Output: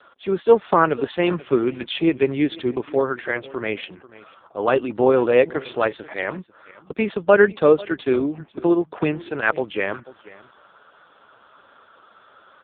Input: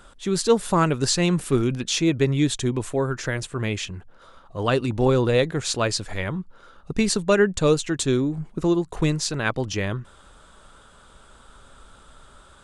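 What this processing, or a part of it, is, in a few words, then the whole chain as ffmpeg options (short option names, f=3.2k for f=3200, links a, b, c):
satellite phone: -af "highpass=350,lowpass=3.2k,aecho=1:1:489:0.1,volume=6.5dB" -ar 8000 -c:a libopencore_amrnb -b:a 4750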